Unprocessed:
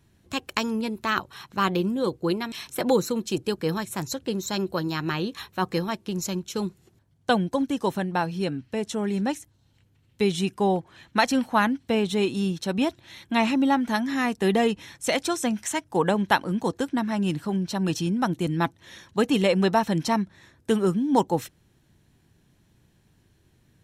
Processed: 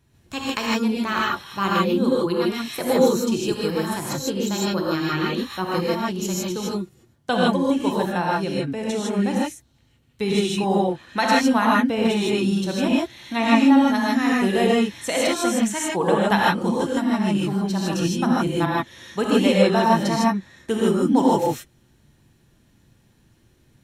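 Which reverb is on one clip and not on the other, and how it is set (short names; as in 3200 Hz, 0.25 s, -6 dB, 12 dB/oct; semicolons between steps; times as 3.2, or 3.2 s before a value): non-linear reverb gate 0.18 s rising, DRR -5 dB; gain -2 dB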